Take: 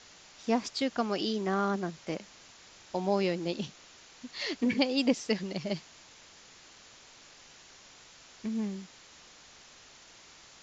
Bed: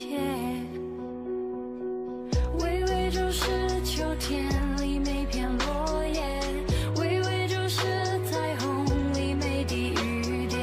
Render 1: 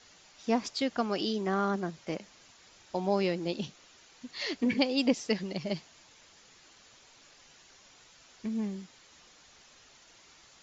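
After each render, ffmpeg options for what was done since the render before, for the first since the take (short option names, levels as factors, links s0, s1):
-af "afftdn=nr=6:nf=-55"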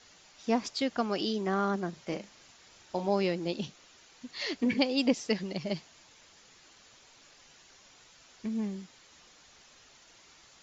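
-filter_complex "[0:a]asettb=1/sr,asplit=3[s0][s1][s2];[s0]atrim=end=1.894[s3];[s1]atrim=start=1.89:end=3.09,asetpts=PTS-STARTPTS,afade=t=in:d=0.004:c=qsin,afade=t=out:st=1.196:d=0.004:c=qsin,asplit=2[s4][s5];[s5]adelay=40,volume=0.376[s6];[s4][s6]amix=inputs=2:normalize=0,atrim=end_sample=52920[s7];[s2]atrim=start=3.086[s8];[s3][s7]acrossfade=d=0.004:c1=hsin:c2=qsin[s9];[s9][s8]acrossfade=d=0.004:c1=qsin:c2=hsin"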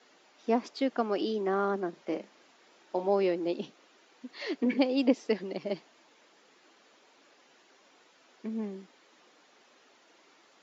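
-af "highpass=f=290:w=0.5412,highpass=f=290:w=1.3066,aemphasis=mode=reproduction:type=riaa"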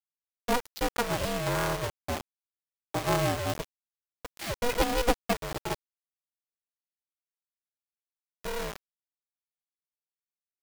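-af "acrusher=bits=5:mix=0:aa=0.000001,aeval=exprs='val(0)*sgn(sin(2*PI*240*n/s))':c=same"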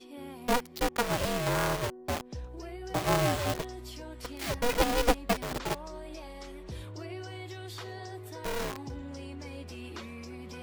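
-filter_complex "[1:a]volume=0.188[s0];[0:a][s0]amix=inputs=2:normalize=0"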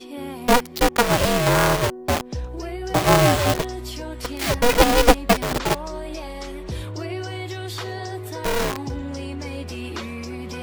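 -af "volume=3.55"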